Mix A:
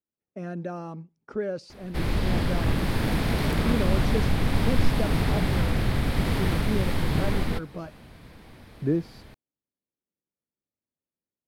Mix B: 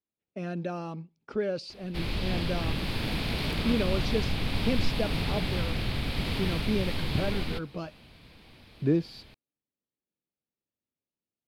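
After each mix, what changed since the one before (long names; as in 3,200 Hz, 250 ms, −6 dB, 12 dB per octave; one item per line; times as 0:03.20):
background −6.5 dB
master: add flat-topped bell 3,400 Hz +8.5 dB 1.3 octaves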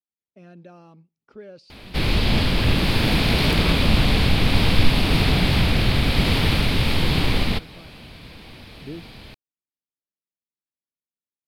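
speech −11.5 dB
background +11.5 dB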